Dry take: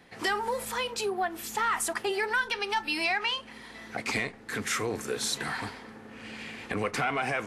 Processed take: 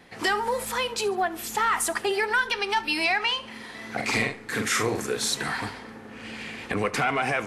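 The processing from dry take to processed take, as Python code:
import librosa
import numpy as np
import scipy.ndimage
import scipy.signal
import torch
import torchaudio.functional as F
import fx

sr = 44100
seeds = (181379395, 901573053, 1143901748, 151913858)

p1 = fx.vibrato(x, sr, rate_hz=2.9, depth_cents=21.0)
p2 = fx.doubler(p1, sr, ms=45.0, db=-4, at=(3.43, 5.06), fade=0.02)
p3 = p2 + fx.echo_feedback(p2, sr, ms=71, feedback_pct=47, wet_db=-20, dry=0)
y = F.gain(torch.from_numpy(p3), 4.0).numpy()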